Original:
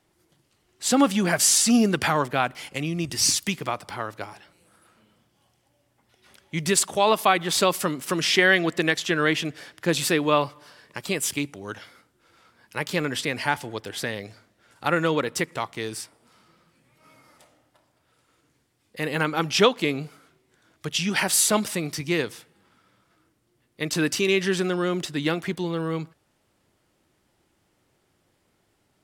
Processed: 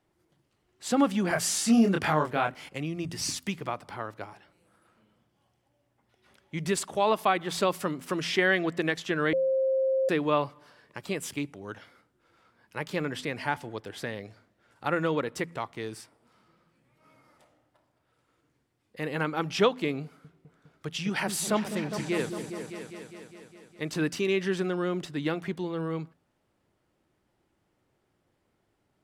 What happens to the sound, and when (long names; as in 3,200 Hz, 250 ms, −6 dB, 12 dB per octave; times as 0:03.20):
0:01.28–0:02.69: double-tracking delay 26 ms −3.5 dB
0:09.33–0:10.09: beep over 530 Hz −18 dBFS
0:20.04–0:24.07: echo whose low-pass opens from repeat to repeat 204 ms, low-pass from 400 Hz, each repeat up 2 octaves, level −6 dB
whole clip: high-shelf EQ 2,800 Hz −9 dB; hum removal 84.83 Hz, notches 3; level −4 dB